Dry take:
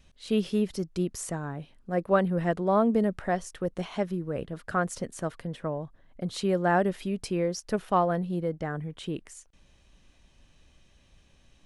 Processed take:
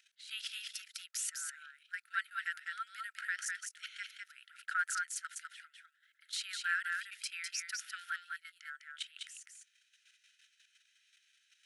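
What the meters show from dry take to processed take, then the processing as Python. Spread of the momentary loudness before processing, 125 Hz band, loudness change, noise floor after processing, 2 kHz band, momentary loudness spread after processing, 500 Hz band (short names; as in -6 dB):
12 LU, under -40 dB, -10.5 dB, -75 dBFS, +1.0 dB, 14 LU, under -40 dB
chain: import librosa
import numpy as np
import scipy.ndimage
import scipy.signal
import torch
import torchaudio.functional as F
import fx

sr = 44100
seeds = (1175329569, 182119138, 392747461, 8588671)

y = fx.level_steps(x, sr, step_db=14)
y = fx.brickwall_highpass(y, sr, low_hz=1300.0)
y = y + 10.0 ** (-4.0 / 20.0) * np.pad(y, (int(203 * sr / 1000.0), 0))[:len(y)]
y = F.gain(torch.from_numpy(y), 4.5).numpy()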